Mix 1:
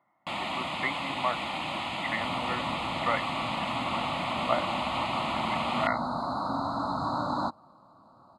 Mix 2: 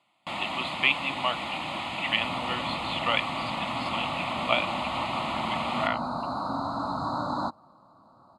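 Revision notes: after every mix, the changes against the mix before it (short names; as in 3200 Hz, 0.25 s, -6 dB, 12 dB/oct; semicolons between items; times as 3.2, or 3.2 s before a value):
speech: remove brick-wall FIR low-pass 2200 Hz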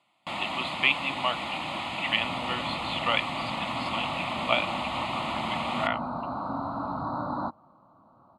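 second sound: add air absorption 420 m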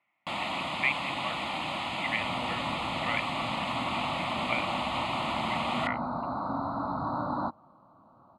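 speech: add ladder low-pass 2300 Hz, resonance 65%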